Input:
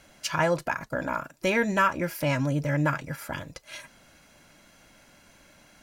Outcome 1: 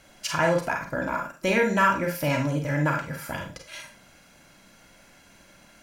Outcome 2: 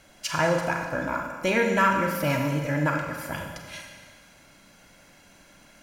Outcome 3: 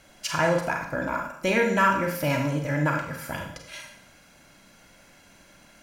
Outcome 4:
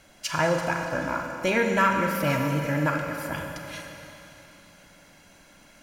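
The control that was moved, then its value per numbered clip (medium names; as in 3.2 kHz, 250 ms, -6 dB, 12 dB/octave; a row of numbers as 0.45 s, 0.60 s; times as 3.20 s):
Schroeder reverb, RT60: 0.31 s, 1.6 s, 0.66 s, 3.3 s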